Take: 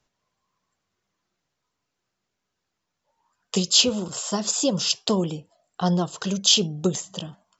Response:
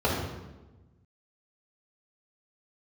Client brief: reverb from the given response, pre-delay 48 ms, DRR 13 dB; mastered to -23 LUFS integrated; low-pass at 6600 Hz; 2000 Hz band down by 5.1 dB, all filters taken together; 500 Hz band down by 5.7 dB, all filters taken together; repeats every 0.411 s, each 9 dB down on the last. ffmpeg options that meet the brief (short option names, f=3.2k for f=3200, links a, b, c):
-filter_complex "[0:a]lowpass=6.6k,equalizer=f=500:t=o:g=-7,equalizer=f=2k:t=o:g=-8,aecho=1:1:411|822|1233|1644:0.355|0.124|0.0435|0.0152,asplit=2[a][b];[1:a]atrim=start_sample=2205,adelay=48[c];[b][c]afir=irnorm=-1:irlink=0,volume=-28dB[d];[a][d]amix=inputs=2:normalize=0,volume=1.5dB"